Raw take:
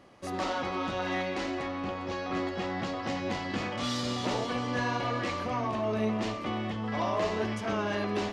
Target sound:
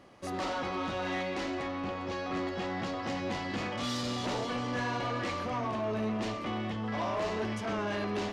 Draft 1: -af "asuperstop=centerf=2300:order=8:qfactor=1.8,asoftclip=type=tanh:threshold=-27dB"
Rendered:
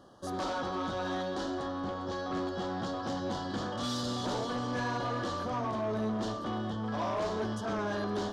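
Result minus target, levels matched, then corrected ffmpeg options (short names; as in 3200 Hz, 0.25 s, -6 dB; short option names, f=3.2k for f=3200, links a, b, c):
2000 Hz band -3.0 dB
-af "asoftclip=type=tanh:threshold=-27dB"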